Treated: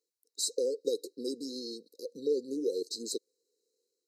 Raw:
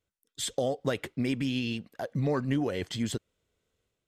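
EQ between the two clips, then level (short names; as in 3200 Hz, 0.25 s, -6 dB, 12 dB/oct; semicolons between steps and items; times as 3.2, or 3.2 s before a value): HPF 370 Hz 24 dB/oct; brick-wall FIR band-stop 530–3800 Hz; bell 1600 Hz +10.5 dB 3 oct; 0.0 dB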